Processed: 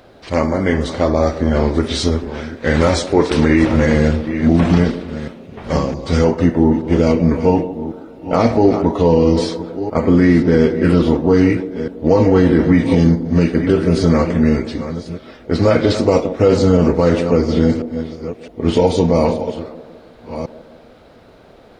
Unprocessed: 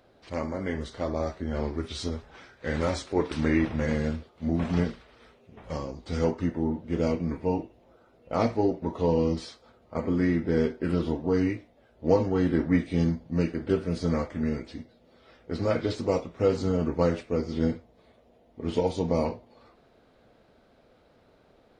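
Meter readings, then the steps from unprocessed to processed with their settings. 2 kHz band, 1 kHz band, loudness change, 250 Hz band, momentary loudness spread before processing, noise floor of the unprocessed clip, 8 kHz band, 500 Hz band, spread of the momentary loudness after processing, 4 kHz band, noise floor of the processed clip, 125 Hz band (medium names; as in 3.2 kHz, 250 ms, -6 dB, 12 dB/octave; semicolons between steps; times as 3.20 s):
+13.5 dB, +13.0 dB, +13.0 dB, +13.5 dB, 10 LU, -61 dBFS, no reading, +13.0 dB, 14 LU, +14.5 dB, -44 dBFS, +13.5 dB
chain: chunks repeated in reverse 660 ms, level -13.5 dB; on a send: feedback echo behind a band-pass 157 ms, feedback 54%, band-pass 400 Hz, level -13 dB; on the sum: loudness maximiser +16 dB; trim -1 dB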